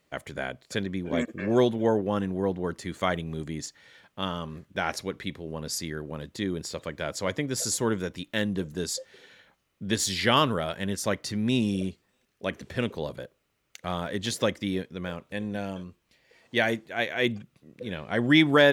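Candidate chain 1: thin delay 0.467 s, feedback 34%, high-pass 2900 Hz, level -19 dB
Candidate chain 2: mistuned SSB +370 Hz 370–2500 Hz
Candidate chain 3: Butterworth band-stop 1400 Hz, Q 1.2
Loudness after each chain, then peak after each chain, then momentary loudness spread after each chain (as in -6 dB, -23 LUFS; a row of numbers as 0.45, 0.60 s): -28.5, -31.5, -29.5 LUFS; -7.0, -9.5, -7.5 dBFS; 14, 15, 13 LU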